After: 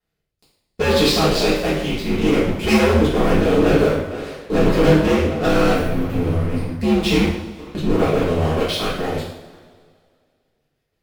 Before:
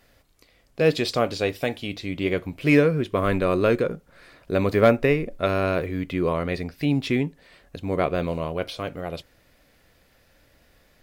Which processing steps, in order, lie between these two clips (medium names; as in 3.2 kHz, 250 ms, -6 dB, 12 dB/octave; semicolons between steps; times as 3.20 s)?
time-frequency box 5.73–6.80 s, 250–8300 Hz -13 dB; ring modulator 77 Hz; band-passed feedback delay 462 ms, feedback 61%, band-pass 480 Hz, level -21.5 dB; rotary cabinet horn 0.65 Hz, later 6 Hz, at 8.84 s; waveshaping leveller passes 5; two-slope reverb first 0.68 s, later 2.2 s, from -18 dB, DRR -8.5 dB; trim -11 dB